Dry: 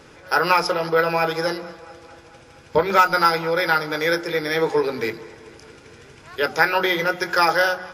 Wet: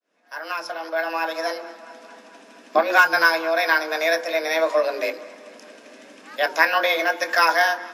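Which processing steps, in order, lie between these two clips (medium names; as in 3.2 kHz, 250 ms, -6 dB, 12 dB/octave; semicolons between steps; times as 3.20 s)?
fade-in on the opening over 2.02 s; frequency shift +160 Hz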